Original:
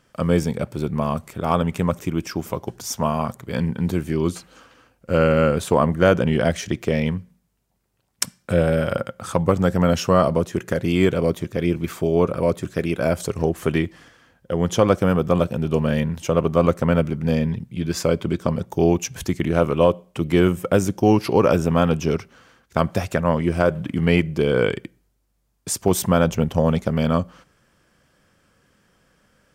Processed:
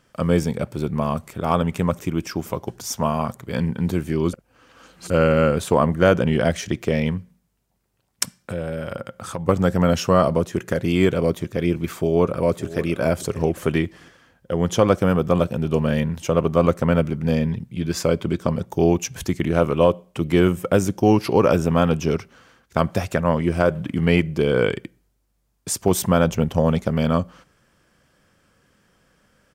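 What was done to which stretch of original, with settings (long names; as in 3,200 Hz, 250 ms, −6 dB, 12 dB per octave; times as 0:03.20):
0:04.33–0:05.10: reverse
0:08.36–0:09.49: downward compressor 2 to 1, threshold −30 dBFS
0:11.94–0:13.00: delay throw 580 ms, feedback 15%, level −15.5 dB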